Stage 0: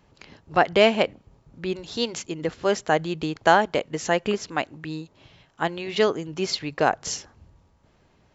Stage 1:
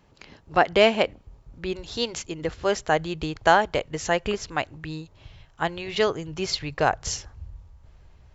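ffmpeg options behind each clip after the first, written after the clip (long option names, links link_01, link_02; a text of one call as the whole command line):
ffmpeg -i in.wav -af "asubboost=boost=10:cutoff=73" out.wav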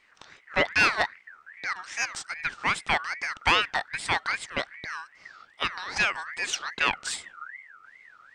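ffmpeg -i in.wav -af "aeval=exprs='(tanh(3.55*val(0)+0.25)-tanh(0.25))/3.55':channel_layout=same,aeval=exprs='val(0)*sin(2*PI*1700*n/s+1700*0.25/2.5*sin(2*PI*2.5*n/s))':channel_layout=same,volume=1dB" out.wav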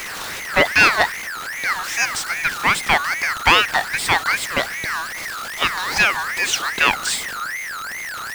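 ffmpeg -i in.wav -af "aeval=exprs='val(0)+0.5*0.0251*sgn(val(0))':channel_layout=same,volume=7.5dB" out.wav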